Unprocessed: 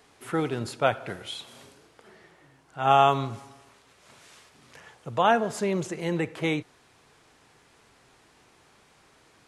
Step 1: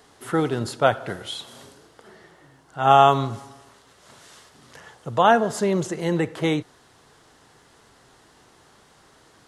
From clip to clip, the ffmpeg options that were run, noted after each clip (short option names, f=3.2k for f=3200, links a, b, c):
-af "equalizer=f=2.4k:t=o:w=0.29:g=-9,volume=5dB"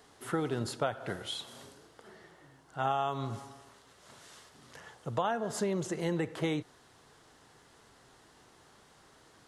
-af "acompressor=threshold=-22dB:ratio=8,volume=-5.5dB"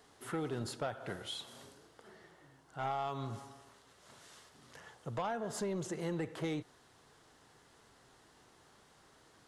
-af "asoftclip=type=tanh:threshold=-25.5dB,volume=-3.5dB"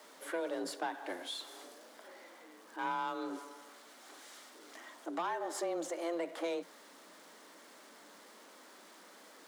-af "aeval=exprs='val(0)+0.5*0.00168*sgn(val(0))':c=same,afreqshift=170"